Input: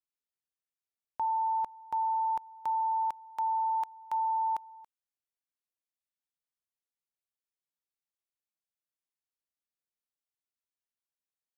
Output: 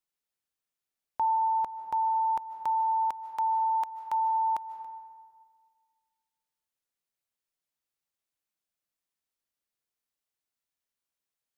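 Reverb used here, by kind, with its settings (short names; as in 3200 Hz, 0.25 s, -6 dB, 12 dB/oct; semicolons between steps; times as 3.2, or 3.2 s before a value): digital reverb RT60 1.8 s, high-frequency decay 0.45×, pre-delay 0.11 s, DRR 11.5 dB; gain +4 dB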